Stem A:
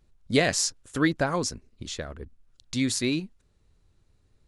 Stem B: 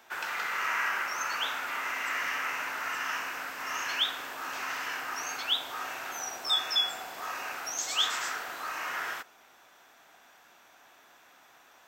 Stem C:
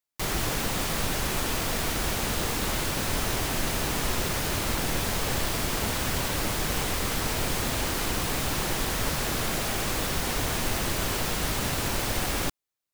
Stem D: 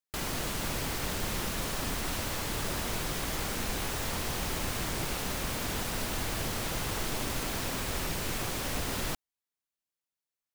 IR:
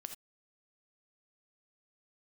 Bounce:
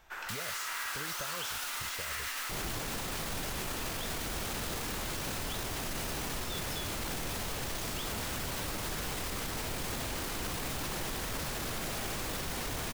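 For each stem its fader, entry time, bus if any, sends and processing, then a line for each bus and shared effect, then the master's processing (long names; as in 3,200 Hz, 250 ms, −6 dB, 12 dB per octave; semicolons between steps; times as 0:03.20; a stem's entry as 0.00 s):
−6.0 dB, 0.00 s, no send, comb filter 1.8 ms; downward compressor, threshold −33 dBFS, peak gain reduction 17 dB
−5.5 dB, 0.00 s, no send, no processing
+3.0 dB, 2.30 s, no send, no processing
+0.5 dB, 0.15 s, no send, Butterworth high-pass 2,500 Hz 48 dB per octave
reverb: not used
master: brickwall limiter −27.5 dBFS, peak gain reduction 16 dB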